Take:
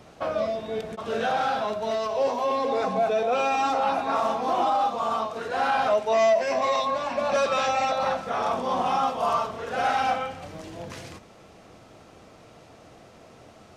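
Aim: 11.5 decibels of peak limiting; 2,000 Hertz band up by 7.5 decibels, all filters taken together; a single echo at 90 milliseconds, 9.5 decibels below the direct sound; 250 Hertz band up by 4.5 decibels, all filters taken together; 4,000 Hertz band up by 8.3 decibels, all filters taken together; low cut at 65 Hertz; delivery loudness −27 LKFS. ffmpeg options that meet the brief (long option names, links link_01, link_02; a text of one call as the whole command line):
ffmpeg -i in.wav -af "highpass=65,equalizer=frequency=250:width_type=o:gain=5,equalizer=frequency=2000:width_type=o:gain=8,equalizer=frequency=4000:width_type=o:gain=7.5,alimiter=limit=-20dB:level=0:latency=1,aecho=1:1:90:0.335,volume=1dB" out.wav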